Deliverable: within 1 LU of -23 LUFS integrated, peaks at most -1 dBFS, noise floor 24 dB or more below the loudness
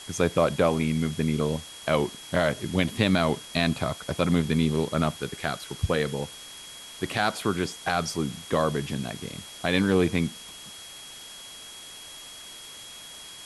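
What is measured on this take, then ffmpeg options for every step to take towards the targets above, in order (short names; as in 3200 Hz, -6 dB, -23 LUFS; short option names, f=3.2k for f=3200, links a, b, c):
steady tone 3300 Hz; tone level -44 dBFS; noise floor -44 dBFS; noise floor target -51 dBFS; loudness -26.5 LUFS; peak -8.5 dBFS; loudness target -23.0 LUFS
-> -af "bandreject=f=3.3k:w=30"
-af "afftdn=nr=7:nf=-44"
-af "volume=3.5dB"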